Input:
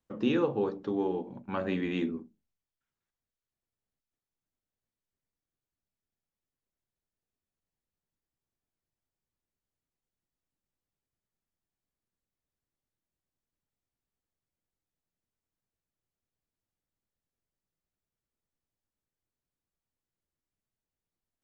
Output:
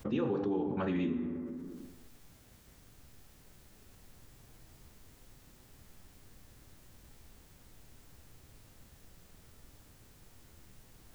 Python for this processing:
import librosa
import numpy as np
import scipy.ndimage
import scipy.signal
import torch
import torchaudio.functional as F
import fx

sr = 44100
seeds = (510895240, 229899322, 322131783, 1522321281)

y = fx.low_shelf(x, sr, hz=140.0, db=9.0)
y = fx.rev_plate(y, sr, seeds[0], rt60_s=1.8, hf_ratio=0.5, predelay_ms=0, drr_db=6.5)
y = fx.stretch_vocoder(y, sr, factor=0.52)
y = fx.env_flatten(y, sr, amount_pct=70)
y = F.gain(torch.from_numpy(y), -7.5).numpy()